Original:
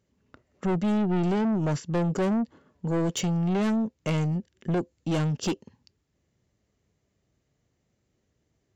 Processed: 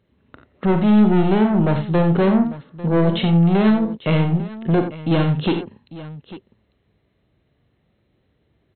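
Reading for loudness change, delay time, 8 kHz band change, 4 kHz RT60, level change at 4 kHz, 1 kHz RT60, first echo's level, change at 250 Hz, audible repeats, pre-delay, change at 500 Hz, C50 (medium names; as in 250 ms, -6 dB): +9.5 dB, 42 ms, no reading, no reverb, +8.0 dB, no reverb, -9.0 dB, +9.5 dB, 3, no reverb, +9.5 dB, no reverb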